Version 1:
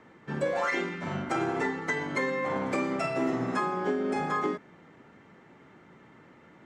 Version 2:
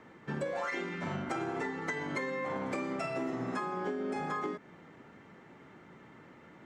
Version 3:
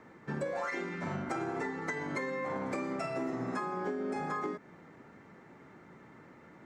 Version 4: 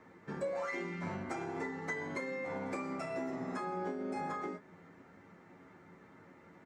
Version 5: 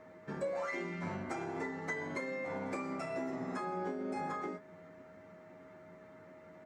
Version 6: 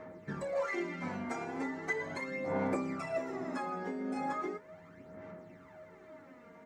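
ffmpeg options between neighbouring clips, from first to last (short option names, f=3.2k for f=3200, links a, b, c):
-af "acompressor=threshold=-33dB:ratio=4"
-af "equalizer=f=3.1k:t=o:w=0.49:g=-7"
-af "aecho=1:1:11|29:0.562|0.335,volume=-4.5dB"
-af "aeval=exprs='val(0)+0.00178*sin(2*PI*630*n/s)':c=same"
-af "aphaser=in_gain=1:out_gain=1:delay=4.3:decay=0.58:speed=0.38:type=sinusoidal"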